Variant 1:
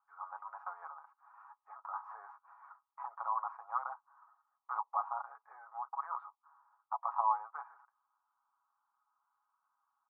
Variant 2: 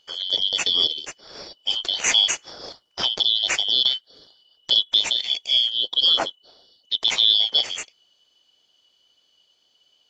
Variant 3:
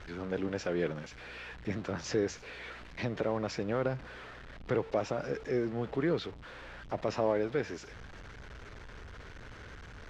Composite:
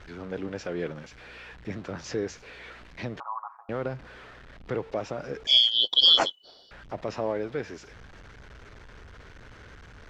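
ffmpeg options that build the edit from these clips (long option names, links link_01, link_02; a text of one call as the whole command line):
ffmpeg -i take0.wav -i take1.wav -i take2.wav -filter_complex "[2:a]asplit=3[link_01][link_02][link_03];[link_01]atrim=end=3.202[link_04];[0:a]atrim=start=3.198:end=3.692[link_05];[link_02]atrim=start=3.688:end=5.472[link_06];[1:a]atrim=start=5.468:end=6.712[link_07];[link_03]atrim=start=6.708[link_08];[link_04][link_05]acrossfade=duration=0.004:curve1=hsin:curve2=hsin[link_09];[link_09][link_06]acrossfade=duration=0.004:curve1=hsin:curve2=hsin[link_10];[link_10][link_07]acrossfade=duration=0.004:curve1=hsin:curve2=hsin[link_11];[link_11][link_08]acrossfade=duration=0.004:curve1=hsin:curve2=hsin" out.wav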